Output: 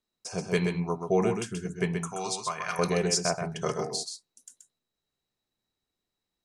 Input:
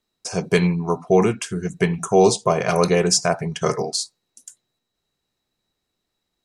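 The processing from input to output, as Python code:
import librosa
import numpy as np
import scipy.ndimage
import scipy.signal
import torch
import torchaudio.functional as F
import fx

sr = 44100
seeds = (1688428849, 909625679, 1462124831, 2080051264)

p1 = fx.low_shelf_res(x, sr, hz=800.0, db=-12.5, q=1.5, at=(2.08, 2.79))
p2 = p1 + fx.echo_single(p1, sr, ms=129, db=-6.0, dry=0)
y = F.gain(torch.from_numpy(p2), -9.0).numpy()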